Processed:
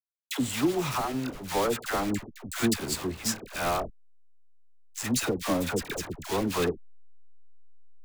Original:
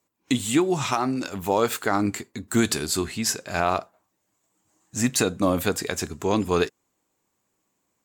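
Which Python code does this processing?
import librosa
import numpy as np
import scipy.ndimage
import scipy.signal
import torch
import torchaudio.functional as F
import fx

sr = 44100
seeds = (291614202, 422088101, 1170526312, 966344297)

y = fx.block_float(x, sr, bits=3)
y = fx.backlash(y, sr, play_db=-28.0)
y = fx.dispersion(y, sr, late='lows', ms=88.0, hz=830.0)
y = F.gain(torch.from_numpy(y), -4.5).numpy()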